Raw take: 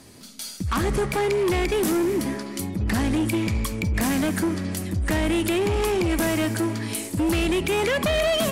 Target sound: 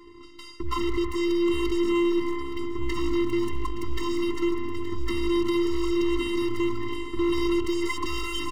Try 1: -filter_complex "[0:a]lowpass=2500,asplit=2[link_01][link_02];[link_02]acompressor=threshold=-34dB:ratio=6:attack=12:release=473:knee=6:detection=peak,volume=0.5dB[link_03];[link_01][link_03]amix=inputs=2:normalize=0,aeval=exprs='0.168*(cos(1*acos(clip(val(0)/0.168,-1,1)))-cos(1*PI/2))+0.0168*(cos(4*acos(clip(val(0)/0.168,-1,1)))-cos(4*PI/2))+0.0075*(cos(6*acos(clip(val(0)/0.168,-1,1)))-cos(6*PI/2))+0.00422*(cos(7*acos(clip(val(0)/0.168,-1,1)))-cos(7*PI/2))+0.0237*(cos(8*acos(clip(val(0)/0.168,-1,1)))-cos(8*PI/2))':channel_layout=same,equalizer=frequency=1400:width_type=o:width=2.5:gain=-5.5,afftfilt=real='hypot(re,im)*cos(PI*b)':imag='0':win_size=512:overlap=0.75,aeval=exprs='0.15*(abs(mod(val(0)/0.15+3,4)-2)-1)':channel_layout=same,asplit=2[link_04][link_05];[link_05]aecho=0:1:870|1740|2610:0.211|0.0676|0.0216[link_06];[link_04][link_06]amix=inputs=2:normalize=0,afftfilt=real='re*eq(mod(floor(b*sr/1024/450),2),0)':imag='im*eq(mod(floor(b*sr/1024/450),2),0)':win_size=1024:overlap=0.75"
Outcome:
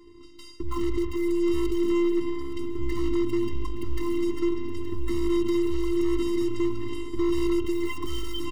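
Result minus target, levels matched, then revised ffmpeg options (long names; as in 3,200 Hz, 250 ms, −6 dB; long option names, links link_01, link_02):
1,000 Hz band −5.5 dB; downward compressor: peak gain reduction −5.5 dB
-filter_complex "[0:a]lowpass=2500,asplit=2[link_01][link_02];[link_02]acompressor=threshold=-40.5dB:ratio=6:attack=12:release=473:knee=6:detection=peak,volume=0.5dB[link_03];[link_01][link_03]amix=inputs=2:normalize=0,aeval=exprs='0.168*(cos(1*acos(clip(val(0)/0.168,-1,1)))-cos(1*PI/2))+0.0168*(cos(4*acos(clip(val(0)/0.168,-1,1)))-cos(4*PI/2))+0.0075*(cos(6*acos(clip(val(0)/0.168,-1,1)))-cos(6*PI/2))+0.00422*(cos(7*acos(clip(val(0)/0.168,-1,1)))-cos(7*PI/2))+0.0237*(cos(8*acos(clip(val(0)/0.168,-1,1)))-cos(8*PI/2))':channel_layout=same,equalizer=frequency=1400:width_type=o:width=2.5:gain=4.5,afftfilt=real='hypot(re,im)*cos(PI*b)':imag='0':win_size=512:overlap=0.75,aeval=exprs='0.15*(abs(mod(val(0)/0.15+3,4)-2)-1)':channel_layout=same,asplit=2[link_04][link_05];[link_05]aecho=0:1:870|1740|2610:0.211|0.0676|0.0216[link_06];[link_04][link_06]amix=inputs=2:normalize=0,afftfilt=real='re*eq(mod(floor(b*sr/1024/450),2),0)':imag='im*eq(mod(floor(b*sr/1024/450),2),0)':win_size=1024:overlap=0.75"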